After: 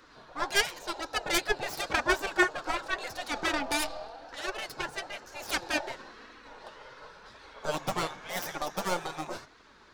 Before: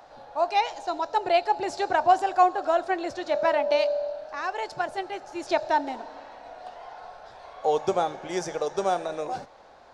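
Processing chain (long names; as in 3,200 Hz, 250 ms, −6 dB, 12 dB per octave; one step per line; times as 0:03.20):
stylus tracing distortion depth 0.26 ms
flanger 0.94 Hz, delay 3 ms, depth 4.9 ms, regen +42%
gate on every frequency bin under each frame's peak −10 dB weak
level +5.5 dB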